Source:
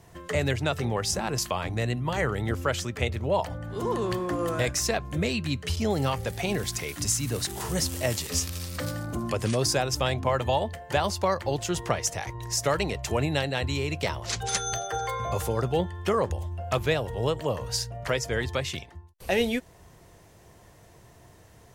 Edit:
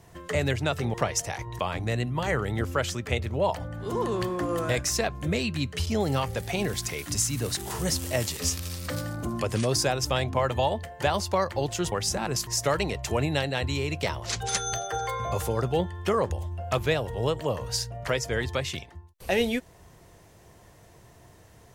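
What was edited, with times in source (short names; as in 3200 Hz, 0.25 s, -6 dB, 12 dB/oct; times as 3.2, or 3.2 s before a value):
0.94–1.49 swap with 11.82–12.47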